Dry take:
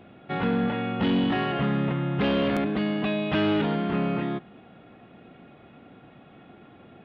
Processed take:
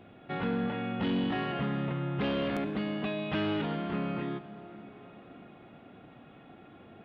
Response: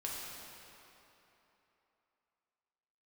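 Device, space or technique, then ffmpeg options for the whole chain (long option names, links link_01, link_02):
ducked reverb: -filter_complex "[0:a]asplit=3[link_01][link_02][link_03];[1:a]atrim=start_sample=2205[link_04];[link_02][link_04]afir=irnorm=-1:irlink=0[link_05];[link_03]apad=whole_len=310817[link_06];[link_05][link_06]sidechaincompress=threshold=-35dB:ratio=5:attack=16:release=1040,volume=-1dB[link_07];[link_01][link_07]amix=inputs=2:normalize=0,volume=-7.5dB"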